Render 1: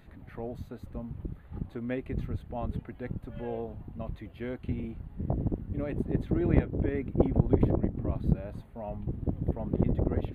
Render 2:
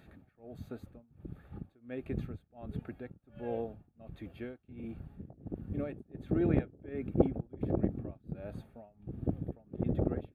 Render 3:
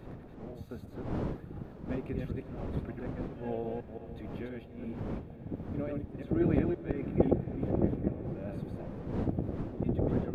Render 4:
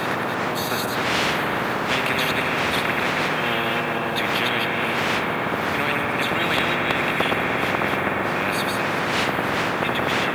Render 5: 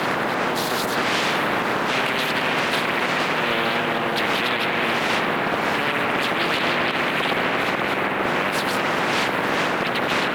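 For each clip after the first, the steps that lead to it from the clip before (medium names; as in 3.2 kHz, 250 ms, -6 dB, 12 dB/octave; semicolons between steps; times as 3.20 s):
tremolo 1.4 Hz, depth 96%; comb of notches 1 kHz
chunks repeated in reverse 173 ms, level -2 dB; wind noise 330 Hz -43 dBFS; echo that smears into a reverb 536 ms, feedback 69%, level -14 dB
high-pass 190 Hz 24 dB/octave; on a send at -5 dB: reverberation RT60 3.0 s, pre-delay 45 ms; on the sum: spectrum-flattening compressor 10:1; trim +6 dB
high-pass 150 Hz 12 dB/octave; peak limiter -13.5 dBFS, peak gain reduction 9 dB; loudspeaker Doppler distortion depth 0.54 ms; trim +2 dB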